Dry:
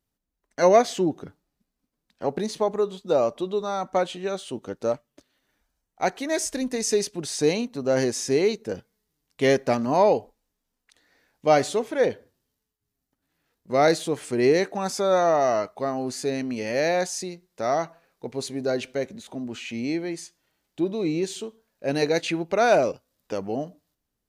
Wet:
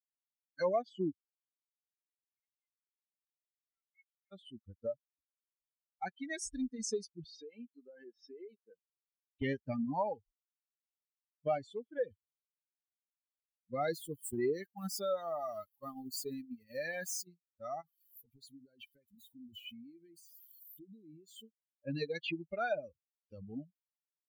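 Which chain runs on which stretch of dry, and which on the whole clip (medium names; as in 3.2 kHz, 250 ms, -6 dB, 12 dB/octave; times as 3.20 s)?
1.21–4.32 s: band-pass filter 2.1 kHz, Q 13 + distance through air 120 m
7.24–9.42 s: band-pass 340–4900 Hz + low-pass that closes with the level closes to 2.4 kHz, closed at -22.5 dBFS + compression 12:1, threshold -25 dBFS
13.80–17.27 s: zero-crossing glitches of -24 dBFS + gate -29 dBFS, range -7 dB
17.81–21.43 s: zero-crossing glitches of -30.5 dBFS + compression 8:1, threshold -31 dBFS
whole clip: expander on every frequency bin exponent 3; treble shelf 3.3 kHz -9.5 dB; compression 2.5:1, threshold -44 dBFS; trim +5.5 dB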